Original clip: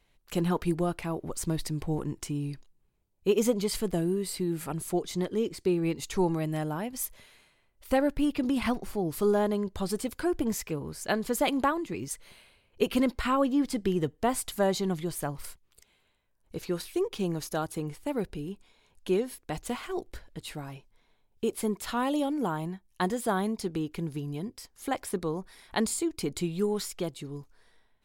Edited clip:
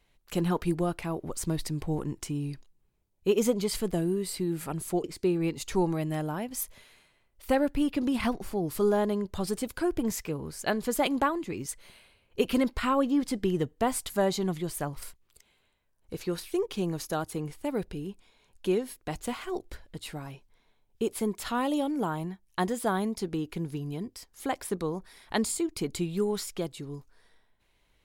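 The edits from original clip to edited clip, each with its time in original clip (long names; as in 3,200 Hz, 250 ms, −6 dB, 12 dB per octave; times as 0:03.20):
0:05.04–0:05.46: remove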